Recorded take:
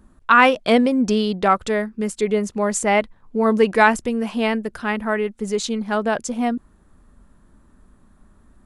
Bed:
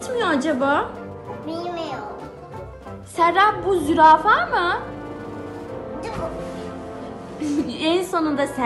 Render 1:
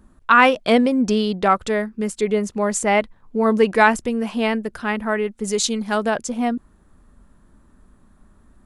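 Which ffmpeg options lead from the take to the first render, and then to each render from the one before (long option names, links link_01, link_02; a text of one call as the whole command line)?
ffmpeg -i in.wav -filter_complex "[0:a]asettb=1/sr,asplit=3[link_01][link_02][link_03];[link_01]atrim=end=5.444[link_04];[link_02]atrim=start=5.44:end=6.1,asetpts=PTS-STARTPTS,afade=type=in:duration=0.004:curve=qsin,afade=type=out:start_time=0.656:duration=0.004:curve=qsin,highshelf=frequency=3900:gain=10[link_05];[link_03]atrim=start=6.096[link_06];[link_04][link_05]acrossfade=duration=0.004:curve1=hsin:curve2=qsin[link_07];[link_07][link_06]acrossfade=duration=0.004:curve1=qsin:curve2=hsin" out.wav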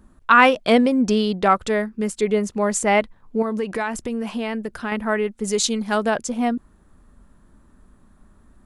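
ffmpeg -i in.wav -filter_complex "[0:a]asettb=1/sr,asplit=3[link_01][link_02][link_03];[link_01]atrim=end=3.424[link_04];[link_02]atrim=start=3.42:end=4.92,asetpts=PTS-STARTPTS,afade=type=in:duration=0.004:curve=qsin,afade=type=out:start_time=1.496:duration=0.004:curve=qsin,acompressor=threshold=-22dB:ratio=4:attack=3.2:release=140:knee=1:detection=peak[link_05];[link_03]atrim=start=4.916[link_06];[link_04][link_05]acrossfade=duration=0.004:curve1=hsin:curve2=qsin[link_07];[link_07][link_06]acrossfade=duration=0.004:curve1=qsin:curve2=hsin" out.wav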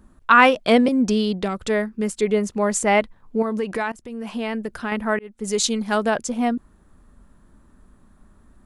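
ffmpeg -i in.wav -filter_complex "[0:a]asettb=1/sr,asplit=3[link_01][link_02][link_03];[link_01]atrim=end=0.884[link_04];[link_02]atrim=start=0.88:end=1.66,asetpts=PTS-STARTPTS,afade=type=in:duration=0.004:curve=qsin,afade=type=out:start_time=0.776:duration=0.004:curve=qsin,acrossover=split=390|3000[link_05][link_06][link_07];[link_06]acompressor=threshold=-28dB:ratio=6:attack=3.2:release=140:knee=2.83:detection=peak[link_08];[link_05][link_08][link_07]amix=inputs=3:normalize=0[link_09];[link_03]atrim=start=1.656[link_10];[link_04][link_09]acrossfade=duration=0.004:curve1=hsin:curve2=qsin[link_11];[link_11][link_10]acrossfade=duration=0.004:curve1=qsin:curve2=hsin,asplit=3[link_12][link_13][link_14];[link_12]atrim=end=3.92,asetpts=PTS-STARTPTS,afade=type=out:start_time=3.916:duration=0.004:curve=hsin:silence=0.0944061[link_15];[link_13]atrim=start=3.92:end=5.19,asetpts=PTS-STARTPTS,afade=type=in:duration=0.53:silence=0.0944061,afade=type=out:start_time=1.266:duration=0.004:curve=hsin[link_16];[link_14]atrim=start=5.19,asetpts=PTS-STARTPTS,afade=type=in:duration=0.5:curve=qsin[link_17];[link_15][link_16][link_17]concat=n=3:v=0:a=1" out.wav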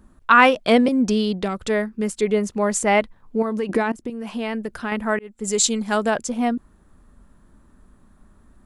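ffmpeg -i in.wav -filter_complex "[0:a]asettb=1/sr,asplit=3[link_01][link_02][link_03];[link_01]atrim=end=3.694[link_04];[link_02]atrim=start=3.69:end=4.1,asetpts=PTS-STARTPTS,afade=type=in:duration=0.004:curve=qsin,afade=type=out:start_time=0.406:duration=0.004:curve=qsin,equalizer=frequency=290:width=1:gain=11.5[link_05];[link_03]atrim=start=4.096[link_06];[link_04][link_05]acrossfade=duration=0.004:curve1=hsin:curve2=qsin[link_07];[link_07][link_06]acrossfade=duration=0.004:curve1=qsin:curve2=hsin,asettb=1/sr,asplit=3[link_08][link_09][link_10];[link_08]atrim=end=5.004[link_11];[link_09]atrim=start=5:end=6.24,asetpts=PTS-STARTPTS,afade=type=in:duration=0.004:curve=qsin,afade=type=out:start_time=1.236:duration=0.004:curve=qsin,equalizer=frequency=7500:width=7.4:gain=11[link_12];[link_10]atrim=start=6.236[link_13];[link_11][link_12]acrossfade=duration=0.004:curve1=hsin:curve2=qsin[link_14];[link_14][link_13]acrossfade=duration=0.004:curve1=qsin:curve2=hsin" out.wav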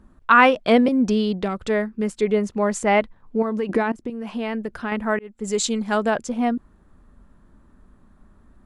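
ffmpeg -i in.wav -af "lowpass=frequency=3400:poles=1" out.wav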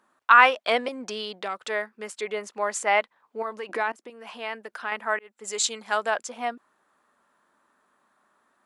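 ffmpeg -i in.wav -af "highpass=770" out.wav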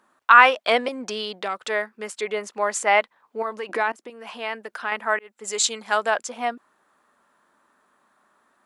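ffmpeg -i in.wav -af "volume=3.5dB,alimiter=limit=-1dB:level=0:latency=1" out.wav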